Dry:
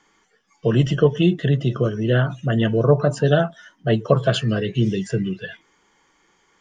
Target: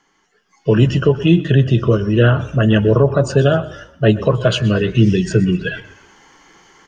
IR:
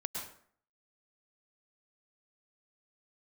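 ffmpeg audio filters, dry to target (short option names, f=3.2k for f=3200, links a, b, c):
-filter_complex "[0:a]alimiter=limit=-7.5dB:level=0:latency=1:release=280,asplit=4[a][b][c][d];[b]adelay=119,afreqshift=-31,volume=-19dB[e];[c]adelay=238,afreqshift=-62,volume=-26.3dB[f];[d]adelay=357,afreqshift=-93,volume=-33.7dB[g];[a][e][f][g]amix=inputs=4:normalize=0,asetrate=42336,aresample=44100,dynaudnorm=f=120:g=7:m=13.5dB,asplit=2[h][i];[1:a]atrim=start_sample=2205[j];[i][j]afir=irnorm=-1:irlink=0,volume=-19.5dB[k];[h][k]amix=inputs=2:normalize=0,volume=-1dB"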